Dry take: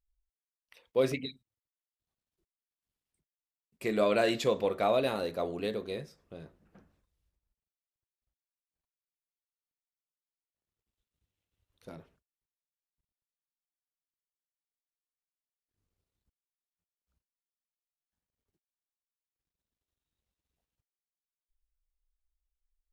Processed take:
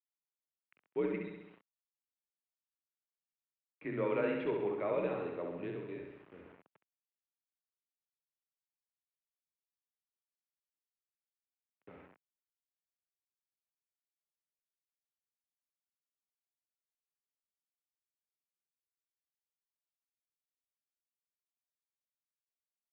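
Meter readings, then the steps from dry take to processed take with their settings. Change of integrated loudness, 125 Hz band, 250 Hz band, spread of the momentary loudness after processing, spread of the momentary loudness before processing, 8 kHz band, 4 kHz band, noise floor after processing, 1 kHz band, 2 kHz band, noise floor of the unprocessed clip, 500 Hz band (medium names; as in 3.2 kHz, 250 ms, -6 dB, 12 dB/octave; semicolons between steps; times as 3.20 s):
-6.5 dB, -5.5 dB, -4.0 dB, 16 LU, 19 LU, under -25 dB, under -15 dB, under -85 dBFS, -9.0 dB, -7.0 dB, under -85 dBFS, -6.0 dB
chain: flutter echo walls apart 11.4 m, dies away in 0.94 s; bit crusher 8-bit; mistuned SSB -84 Hz 230–2700 Hz; trim -8 dB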